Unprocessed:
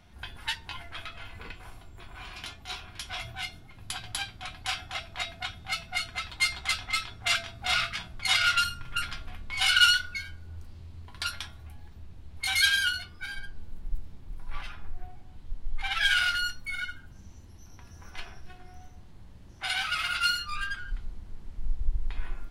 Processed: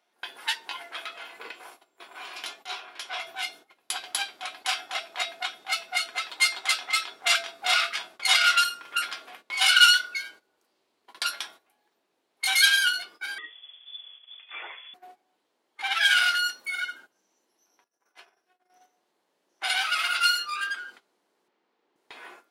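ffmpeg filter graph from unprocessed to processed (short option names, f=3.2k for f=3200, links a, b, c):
-filter_complex "[0:a]asettb=1/sr,asplit=3[a][b][c];[a]atrim=end=2.664[d];[b]atrim=start=2.66:end=3.27,asetpts=PTS-STARTPTS,afade=t=in:d=0.004:c=qsin,afade=t=out:st=0.606:d=0.004:c=qsin,highshelf=f=2.7k:g=6.5,asplit=2[e][f];[f]highpass=f=720:p=1,volume=7dB,asoftclip=type=tanh:threshold=-17.5dB[g];[e][g]amix=inputs=2:normalize=0,lowpass=f=1.2k:p=1,volume=-6dB[h];[c]atrim=start=3.266[i];[d][h]acrossfade=d=0.004:c1=hsin:c2=qsin[j];[j][i]acrossfade=d=0.004:c1=qsin:c2=hsin,asettb=1/sr,asplit=3[k][l][m];[k]atrim=end=13.384[n];[l]atrim=start=13.38:end=14.94,asetpts=PTS-STARTPTS,afade=t=in:d=0.004:c=qsin,afade=t=out:st=1.556:d=0.004:c=qsin,highpass=78,lowpass=f=3k:t=q:w=0.5098,lowpass=f=3k:t=q:w=0.6013,lowpass=f=3k:t=q:w=0.9,lowpass=f=3k:t=q:w=2.563,afreqshift=-3500[o];[m]atrim=start=14.936[p];[n][o]acrossfade=d=0.004:c1=hsin:c2=qsin[q];[q][p]acrossfade=d=0.004:c1=qsin:c2=hsin,asettb=1/sr,asplit=3[r][s][t];[r]atrim=end=17.844[u];[s]atrim=start=17.84:end=18.7,asetpts=PTS-STARTPTS,afade=t=in:d=0.004:c=qsin,afade=t=out:st=0.856:d=0.004:c=qsin,agate=range=-33dB:threshold=-39dB:ratio=3:release=100:detection=peak,equalizer=f=3.8k:w=0.75:g=-3,acompressor=threshold=-41dB:ratio=6:attack=3.2:release=140:knee=1:detection=peak[v];[t]atrim=start=18.696[w];[u][v]acrossfade=d=0.004:c1=hsin:c2=qsin[x];[x][w]acrossfade=d=0.004:c1=qsin:c2=hsin,asettb=1/sr,asplit=3[y][z][aa];[y]atrim=end=21.484[ab];[z]atrim=start=21.48:end=21.96,asetpts=PTS-STARTPTS,afade=t=in:d=0.004:c=qsin,afade=t=out:st=0.476:d=0.004:c=qsin,highpass=180,lowpass=3.8k,bandreject=f=640:w=10[ac];[aa]atrim=start=21.956[ad];[ab][ac]acrossfade=d=0.004:c1=hsin:c2=qsin[ae];[ae][ad]acrossfade=d=0.004:c1=qsin:c2=hsin,highpass=f=380:w=0.5412,highpass=f=380:w=1.3066,equalizer=f=2.1k:w=0.33:g=-3.5,agate=range=-15dB:threshold=-55dB:ratio=16:detection=peak,volume=7dB"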